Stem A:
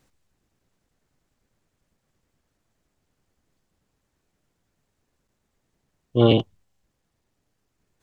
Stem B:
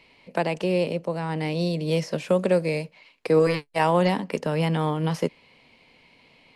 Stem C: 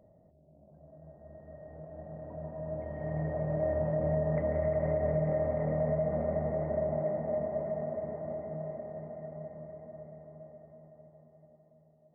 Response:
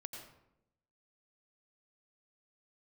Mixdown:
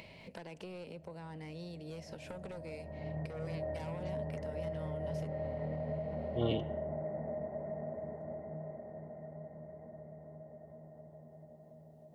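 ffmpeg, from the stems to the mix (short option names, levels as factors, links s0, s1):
-filter_complex "[0:a]adelay=200,volume=0.126,asplit=2[s0][s1];[s1]volume=0.251[s2];[1:a]aeval=exprs='0.376*(cos(1*acos(clip(val(0)/0.376,-1,1)))-cos(1*PI/2))+0.106*(cos(5*acos(clip(val(0)/0.376,-1,1)))-cos(5*PI/2))':c=same,acompressor=threshold=0.0501:ratio=10,volume=0.133,asplit=3[s3][s4][s5];[s4]volume=0.0841[s6];[2:a]volume=0.531,asplit=2[s7][s8];[s8]volume=0.355[s9];[s5]apad=whole_len=535674[s10];[s7][s10]sidechaincompress=threshold=0.00355:ratio=8:attack=16:release=450[s11];[s3][s11]amix=inputs=2:normalize=0,equalizer=f=630:t=o:w=0.43:g=-3.5,alimiter=level_in=2.99:limit=0.0631:level=0:latency=1:release=143,volume=0.335,volume=1[s12];[3:a]atrim=start_sample=2205[s13];[s2][s6][s9]amix=inputs=3:normalize=0[s14];[s14][s13]afir=irnorm=-1:irlink=0[s15];[s0][s12][s15]amix=inputs=3:normalize=0,bandreject=f=1200:w=11,acompressor=mode=upward:threshold=0.00631:ratio=2.5"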